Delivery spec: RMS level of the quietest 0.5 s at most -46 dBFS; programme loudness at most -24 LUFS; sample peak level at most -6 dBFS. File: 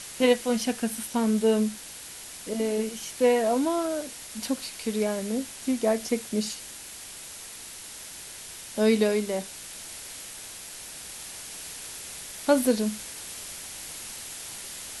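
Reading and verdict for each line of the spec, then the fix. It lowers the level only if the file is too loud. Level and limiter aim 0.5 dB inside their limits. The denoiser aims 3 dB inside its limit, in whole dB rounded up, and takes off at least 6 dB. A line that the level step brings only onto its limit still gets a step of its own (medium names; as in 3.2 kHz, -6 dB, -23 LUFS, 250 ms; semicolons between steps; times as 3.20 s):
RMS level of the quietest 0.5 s -42 dBFS: fail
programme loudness -29.0 LUFS: pass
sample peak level -8.5 dBFS: pass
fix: noise reduction 7 dB, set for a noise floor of -42 dBFS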